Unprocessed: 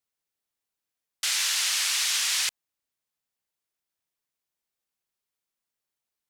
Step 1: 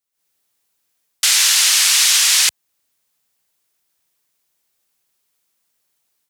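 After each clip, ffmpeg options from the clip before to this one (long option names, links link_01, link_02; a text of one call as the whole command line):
ffmpeg -i in.wav -af "highpass=59,highshelf=frequency=5000:gain=5.5,dynaudnorm=framelen=120:gausssize=3:maxgain=13dB" out.wav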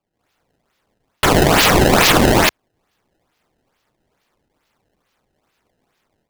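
ffmpeg -i in.wav -af "acrusher=samples=22:mix=1:aa=0.000001:lfo=1:lforange=35.2:lforate=2.3,volume=1.5dB" out.wav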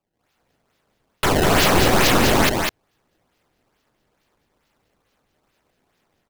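ffmpeg -i in.wav -af "aeval=exprs='(tanh(5.01*val(0)+0.45)-tanh(0.45))/5.01':channel_layout=same,aecho=1:1:200:0.631" out.wav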